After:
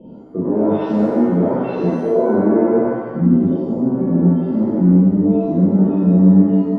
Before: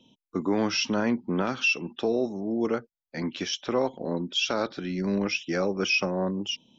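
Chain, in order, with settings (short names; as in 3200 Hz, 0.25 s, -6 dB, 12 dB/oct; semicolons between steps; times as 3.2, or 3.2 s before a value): nonlinear frequency compression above 3100 Hz 4:1; reverse; compressor 5:1, threshold -36 dBFS, peak gain reduction 14.5 dB; reverse; low-pass sweep 510 Hz -> 230 Hz, 2.51–3.13; maximiser +29.5 dB; shimmer reverb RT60 1.1 s, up +7 st, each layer -8 dB, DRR -7.5 dB; gain -14 dB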